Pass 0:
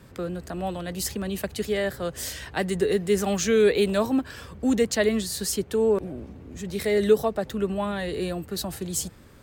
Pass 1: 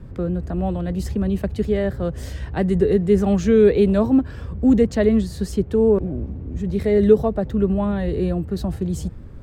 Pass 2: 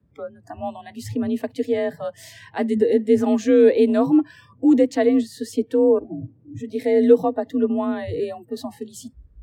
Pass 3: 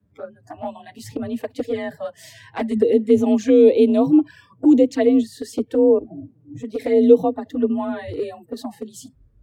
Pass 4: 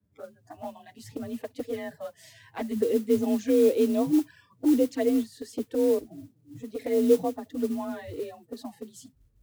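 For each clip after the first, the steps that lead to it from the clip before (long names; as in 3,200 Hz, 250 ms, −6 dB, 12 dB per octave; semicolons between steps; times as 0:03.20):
spectral tilt −4 dB per octave
frequency shifter +40 Hz; noise reduction from a noise print of the clip's start 25 dB
flanger swept by the level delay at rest 10.1 ms, full sweep at −14 dBFS; level +2.5 dB
noise that follows the level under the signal 23 dB; level −8.5 dB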